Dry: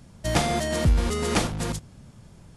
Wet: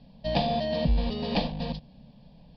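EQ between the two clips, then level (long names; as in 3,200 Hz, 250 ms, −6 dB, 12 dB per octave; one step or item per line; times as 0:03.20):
Butterworth low-pass 4,900 Hz 96 dB per octave
phaser with its sweep stopped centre 360 Hz, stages 6
notch filter 2,100 Hz, Q 6.5
0.0 dB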